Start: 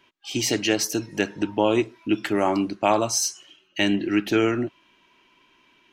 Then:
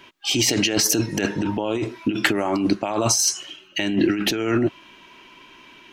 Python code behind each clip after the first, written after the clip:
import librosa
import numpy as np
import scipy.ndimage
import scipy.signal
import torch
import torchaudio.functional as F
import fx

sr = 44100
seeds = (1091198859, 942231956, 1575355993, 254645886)

y = fx.over_compress(x, sr, threshold_db=-28.0, ratio=-1.0)
y = y * librosa.db_to_amplitude(7.0)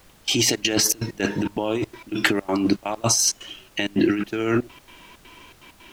y = fx.step_gate(x, sr, bpm=163, pattern='.x.xxx.xxx', floor_db=-24.0, edge_ms=4.5)
y = fx.dmg_noise_colour(y, sr, seeds[0], colour='pink', level_db=-53.0)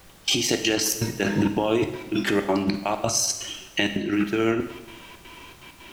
y = fx.over_compress(x, sr, threshold_db=-22.0, ratio=-0.5)
y = fx.rev_double_slope(y, sr, seeds[1], early_s=0.97, late_s=2.5, knee_db=-21, drr_db=6.5)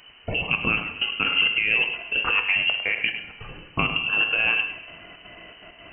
y = x + 10.0 ** (-10.0 / 20.0) * np.pad(x, (int(103 * sr / 1000.0), 0))[:len(x)]
y = fx.freq_invert(y, sr, carrier_hz=3000)